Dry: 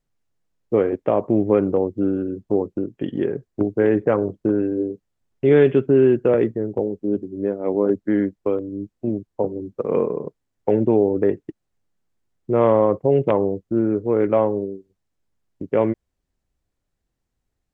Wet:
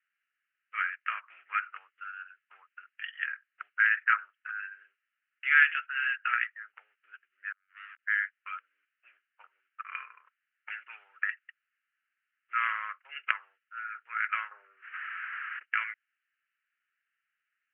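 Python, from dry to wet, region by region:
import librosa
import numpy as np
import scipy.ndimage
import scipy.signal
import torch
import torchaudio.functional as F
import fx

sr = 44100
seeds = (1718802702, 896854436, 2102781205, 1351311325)

y = fx.chain(x, sr, fx.clip_hard(threshold_db=-25.5),
    fx.over_compress(threshold_db=-35.0, ratio=-0.5),
    fx.gate_flip(shuts_db=-31.0, range_db=-37), at=(7.52, 7.99))
y = fx.chain(y, sr, fx.lowpass(hz=2500.0, slope=24),
    fx.peak_eq(hz=620.0, db=15.0, octaves=2.9),
    fx.env_flatten(amount_pct=70), at=(14.51, 15.63))
y = scipy.signal.sosfilt(scipy.signal.cheby1(4, 1.0, [1300.0, 2900.0], 'bandpass', fs=sr, output='sos'), y)
y = fx.peak_eq(y, sr, hz=1700.0, db=4.0, octaves=0.48)
y = y * librosa.db_to_amplitude(8.0)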